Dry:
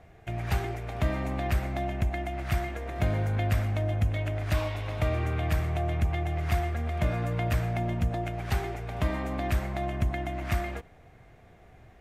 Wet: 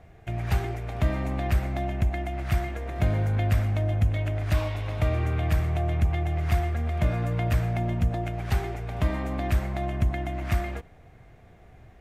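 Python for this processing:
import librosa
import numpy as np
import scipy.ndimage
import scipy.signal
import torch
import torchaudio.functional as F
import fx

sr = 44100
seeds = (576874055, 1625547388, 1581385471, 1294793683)

y = fx.low_shelf(x, sr, hz=220.0, db=4.0)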